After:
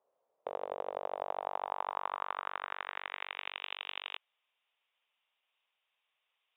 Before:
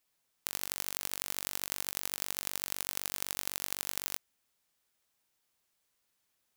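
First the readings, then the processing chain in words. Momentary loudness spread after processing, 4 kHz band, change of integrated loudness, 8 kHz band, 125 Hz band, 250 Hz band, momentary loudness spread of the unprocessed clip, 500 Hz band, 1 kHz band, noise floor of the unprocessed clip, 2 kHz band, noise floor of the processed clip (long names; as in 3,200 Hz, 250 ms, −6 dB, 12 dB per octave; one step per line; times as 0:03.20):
5 LU, −5.0 dB, −4.5 dB, below −40 dB, below −15 dB, −7.5 dB, 2 LU, +10.5 dB, +10.5 dB, −79 dBFS, +1.5 dB, −84 dBFS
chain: voice inversion scrambler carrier 3,700 Hz
band-pass filter sweep 520 Hz → 2,800 Hz, 0:00.86–0:03.70
flat-topped bell 710 Hz +11 dB
level +7 dB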